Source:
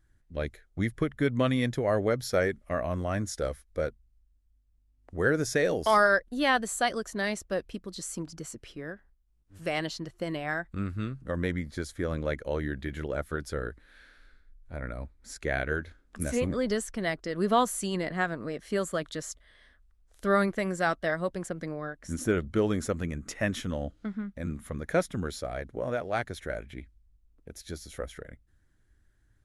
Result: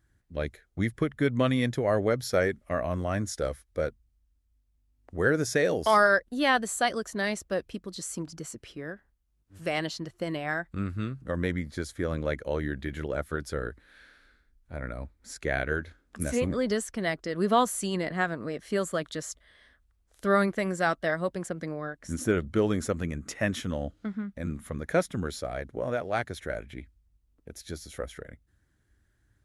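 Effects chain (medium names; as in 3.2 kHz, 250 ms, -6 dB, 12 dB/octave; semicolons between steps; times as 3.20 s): high-pass 50 Hz; trim +1 dB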